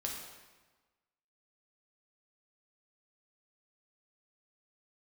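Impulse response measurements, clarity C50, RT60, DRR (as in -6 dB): 2.5 dB, 1.3 s, -1.5 dB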